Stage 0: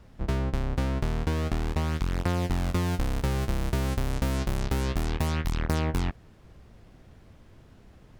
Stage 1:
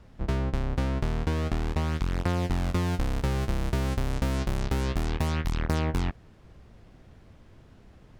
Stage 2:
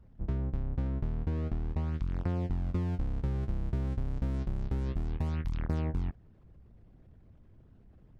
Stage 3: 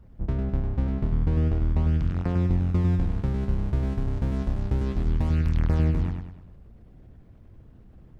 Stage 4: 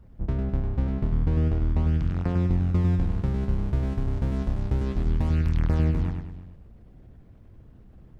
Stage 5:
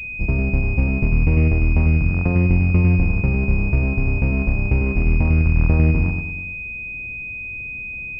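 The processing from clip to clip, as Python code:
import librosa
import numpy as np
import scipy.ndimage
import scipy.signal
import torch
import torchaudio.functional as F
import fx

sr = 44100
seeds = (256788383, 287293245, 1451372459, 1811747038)

y1 = fx.high_shelf(x, sr, hz=10000.0, db=-7.0)
y2 = fx.envelope_sharpen(y1, sr, power=1.5)
y2 = y2 * librosa.db_to_amplitude(-4.5)
y3 = fx.echo_feedback(y2, sr, ms=101, feedback_pct=43, wet_db=-5)
y3 = y3 * librosa.db_to_amplitude(6.0)
y4 = y3 + 10.0 ** (-20.0 / 20.0) * np.pad(y3, (int(348 * sr / 1000.0), 0))[:len(y3)]
y5 = fx.pwm(y4, sr, carrier_hz=2500.0)
y5 = y5 * librosa.db_to_amplitude(7.0)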